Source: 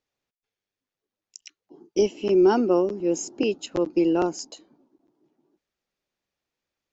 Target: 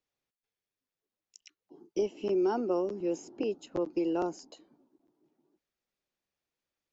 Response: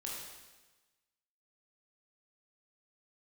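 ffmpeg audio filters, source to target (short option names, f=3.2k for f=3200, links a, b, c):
-filter_complex "[0:a]acrossover=split=400|1400|4100[a][b][c][d];[a]acompressor=threshold=-30dB:ratio=4[e];[b]acompressor=threshold=-23dB:ratio=4[f];[c]acompressor=threshold=-50dB:ratio=4[g];[d]acompressor=threshold=-51dB:ratio=4[h];[e][f][g][h]amix=inputs=4:normalize=0,volume=-5dB"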